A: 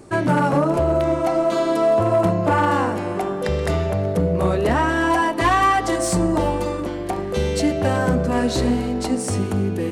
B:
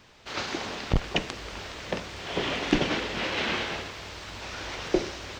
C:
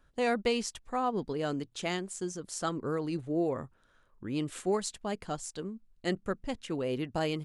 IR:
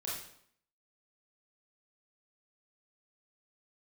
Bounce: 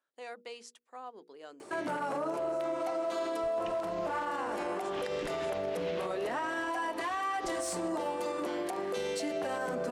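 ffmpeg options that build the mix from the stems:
-filter_complex "[0:a]adelay=1600,volume=-1.5dB[link_01];[1:a]adelay=2500,volume=-11.5dB[link_02];[2:a]highpass=210,bandreject=frequency=60:width_type=h:width=6,bandreject=frequency=120:width_type=h:width=6,bandreject=frequency=180:width_type=h:width=6,bandreject=frequency=240:width_type=h:width=6,bandreject=frequency=300:width_type=h:width=6,bandreject=frequency=360:width_type=h:width=6,bandreject=frequency=420:width_type=h:width=6,bandreject=frequency=480:width_type=h:width=6,volume=-13.5dB,asplit=2[link_03][link_04];[link_04]apad=whole_len=348319[link_05];[link_02][link_05]sidechaincompress=threshold=-56dB:ratio=8:attack=16:release=110[link_06];[link_01][link_03]amix=inputs=2:normalize=0,highpass=390,alimiter=limit=-19.5dB:level=0:latency=1:release=364,volume=0dB[link_07];[link_06][link_07]amix=inputs=2:normalize=0,alimiter=level_in=2dB:limit=-24dB:level=0:latency=1:release=86,volume=-2dB"

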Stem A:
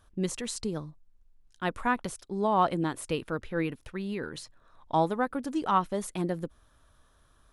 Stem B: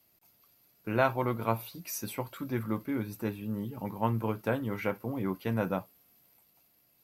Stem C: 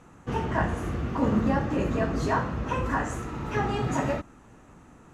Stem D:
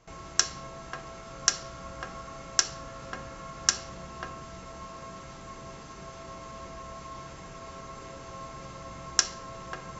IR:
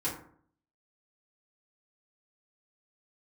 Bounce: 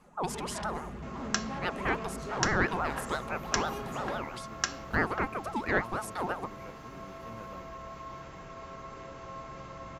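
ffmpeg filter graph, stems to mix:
-filter_complex "[0:a]aeval=exprs='val(0)*sin(2*PI*810*n/s+810*0.35/6*sin(2*PI*6*n/s))':channel_layout=same,volume=-0.5dB[link_01];[1:a]acrusher=bits=9:mix=0:aa=0.000001,adelay=1800,volume=-18dB[link_02];[2:a]aecho=1:1:4.9:0.74,acontrast=78,asoftclip=type=tanh:threshold=-18dB,volume=-17dB[link_03];[3:a]bass=frequency=250:gain=-2,treble=frequency=4000:gain=-11,adelay=950,volume=-0.5dB[link_04];[link_01][link_02][link_03][link_04]amix=inputs=4:normalize=0"

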